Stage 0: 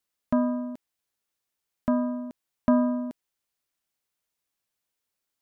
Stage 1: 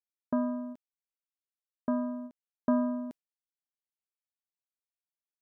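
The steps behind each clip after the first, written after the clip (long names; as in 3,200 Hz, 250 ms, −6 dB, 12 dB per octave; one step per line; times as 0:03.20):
noise gate with hold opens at −23 dBFS
level −5.5 dB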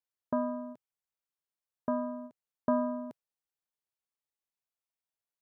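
octave-band graphic EQ 125/250/500/1,000 Hz +6/−4/+4/+4 dB
level −2 dB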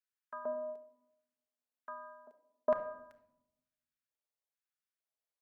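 auto-filter high-pass square 1.1 Hz 520–1,500 Hz
rectangular room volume 2,400 cubic metres, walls furnished, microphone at 1.4 metres
level −6.5 dB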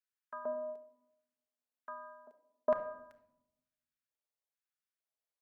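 no processing that can be heard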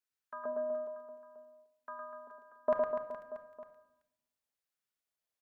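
reverse bouncing-ball delay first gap 110 ms, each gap 1.25×, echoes 5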